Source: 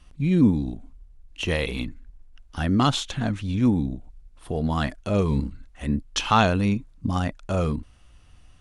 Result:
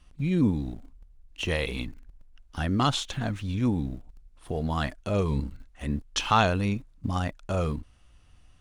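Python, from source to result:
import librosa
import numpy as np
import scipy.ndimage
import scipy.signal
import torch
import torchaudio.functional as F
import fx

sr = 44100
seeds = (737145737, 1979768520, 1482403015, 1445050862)

p1 = fx.dynamic_eq(x, sr, hz=230.0, q=1.3, threshold_db=-32.0, ratio=4.0, max_db=-4)
p2 = np.where(np.abs(p1) >= 10.0 ** (-38.0 / 20.0), p1, 0.0)
p3 = p1 + (p2 * 10.0 ** (-11.0 / 20.0))
y = p3 * 10.0 ** (-4.5 / 20.0)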